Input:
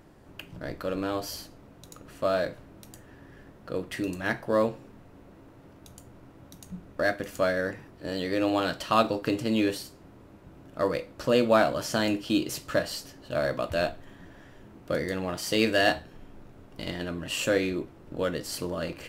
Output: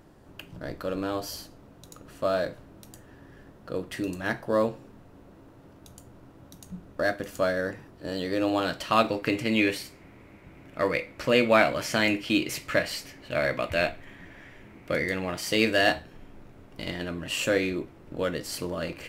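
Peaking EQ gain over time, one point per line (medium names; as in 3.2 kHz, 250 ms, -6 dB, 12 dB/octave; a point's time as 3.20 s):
peaking EQ 2.2 kHz 0.53 oct
8.53 s -2.5 dB
8.98 s +7 dB
9.44 s +14.5 dB
14.80 s +14.5 dB
15.74 s +4 dB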